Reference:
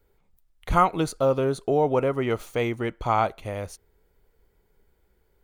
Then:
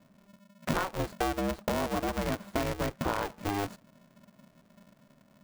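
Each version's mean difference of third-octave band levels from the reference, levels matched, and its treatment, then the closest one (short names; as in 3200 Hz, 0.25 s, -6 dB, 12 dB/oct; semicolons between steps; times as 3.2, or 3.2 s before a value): 13.0 dB: median filter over 15 samples; compressor 16:1, threshold -31 dBFS, peak gain reduction 18 dB; polarity switched at an audio rate 200 Hz; gain +4 dB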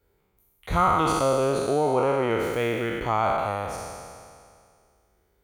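8.0 dB: spectral trails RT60 2.18 s; HPF 42 Hz; in parallel at -1.5 dB: limiter -11.5 dBFS, peak gain reduction 6 dB; on the sum: gain -8 dB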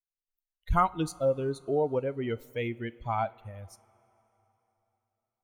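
6.0 dB: per-bin expansion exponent 2; low shelf 110 Hz +5 dB; two-slope reverb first 0.29 s, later 3.5 s, from -18 dB, DRR 15.5 dB; gain -3.5 dB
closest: third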